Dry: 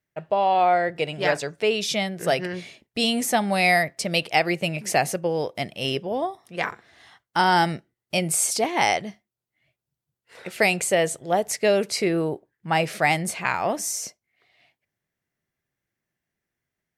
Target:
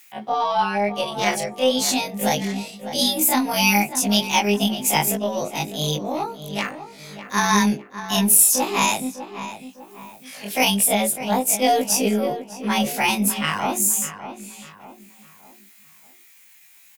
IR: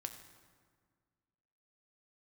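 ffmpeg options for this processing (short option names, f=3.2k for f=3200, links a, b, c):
-filter_complex "[0:a]afftfilt=real='re':imag='-im':win_size=2048:overlap=0.75,highpass=96,equalizer=f=160:t=o:w=1.9:g=10,bandreject=f=50:t=h:w=6,bandreject=f=100:t=h:w=6,bandreject=f=150:t=h:w=6,bandreject=f=200:t=h:w=6,bandreject=f=250:t=h:w=6,bandreject=f=300:t=h:w=6,bandreject=f=350:t=h:w=6,bandreject=f=400:t=h:w=6,bandreject=f=450:t=h:w=6,acrossover=split=820[a][b];[b]acompressor=mode=upward:threshold=-39dB:ratio=2.5[c];[a][c]amix=inputs=2:normalize=0,aeval=exprs='0.422*(cos(1*acos(clip(val(0)/0.422,-1,1)))-cos(1*PI/2))+0.00266*(cos(8*acos(clip(val(0)/0.422,-1,1)))-cos(8*PI/2))':c=same,asetrate=52444,aresample=44100,atempo=0.840896,crystalizer=i=2.5:c=0,asplit=2[d][e];[e]adelay=602,lowpass=f=2.3k:p=1,volume=-11dB,asplit=2[f][g];[g]adelay=602,lowpass=f=2.3k:p=1,volume=0.41,asplit=2[h][i];[i]adelay=602,lowpass=f=2.3k:p=1,volume=0.41,asplit=2[j][k];[k]adelay=602,lowpass=f=2.3k:p=1,volume=0.41[l];[f][h][j][l]amix=inputs=4:normalize=0[m];[d][m]amix=inputs=2:normalize=0,volume=2dB"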